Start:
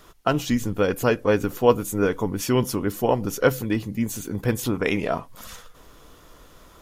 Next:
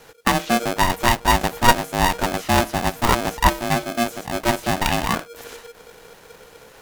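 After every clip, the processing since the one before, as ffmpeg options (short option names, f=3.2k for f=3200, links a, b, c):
-filter_complex "[0:a]acrossover=split=790|3000[a][b][c];[c]acompressor=threshold=-45dB:ratio=6[d];[a][b][d]amix=inputs=3:normalize=0,aeval=exprs='val(0)*sgn(sin(2*PI*470*n/s))':c=same,volume=3dB"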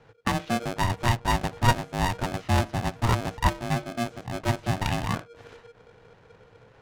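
-af "equalizer=f=110:t=o:w=0.86:g=14.5,adynamicsmooth=sensitivity=3.5:basefreq=2.9k,volume=-8.5dB"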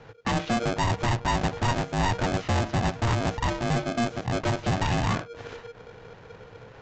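-af "alimiter=limit=-17dB:level=0:latency=1:release=77,aresample=16000,asoftclip=type=hard:threshold=-28.5dB,aresample=44100,volume=7.5dB"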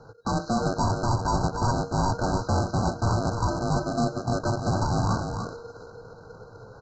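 -af "afftfilt=real='re*(1-between(b*sr/4096,1600,3900))':imag='im*(1-between(b*sr/4096,1600,3900))':win_size=4096:overlap=0.75,aecho=1:1:296:0.501"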